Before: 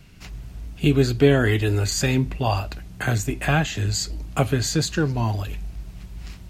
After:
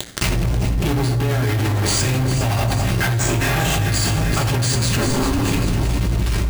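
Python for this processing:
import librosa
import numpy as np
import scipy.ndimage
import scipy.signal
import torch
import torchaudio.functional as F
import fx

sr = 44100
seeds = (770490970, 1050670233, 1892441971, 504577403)

y = fx.chopper(x, sr, hz=0.69, depth_pct=60, duty_pct=45)
y = fx.fuzz(y, sr, gain_db=43.0, gate_db=-39.0)
y = fx.doubler(y, sr, ms=40.0, db=-2.0, at=(3.2, 3.76))
y = fx.ring_mod(y, sr, carrier_hz=fx.line((4.72, 64.0), (5.44, 220.0)), at=(4.72, 5.44), fade=0.02)
y = fx.echo_alternate(y, sr, ms=200, hz=1400.0, feedback_pct=71, wet_db=-6.5)
y = fx.rev_fdn(y, sr, rt60_s=0.89, lf_ratio=1.5, hf_ratio=0.7, size_ms=51.0, drr_db=1.5)
y = np.repeat(y[::3], 3)[:len(y)]
y = fx.env_flatten(y, sr, amount_pct=100)
y = y * librosa.db_to_amplitude(-15.5)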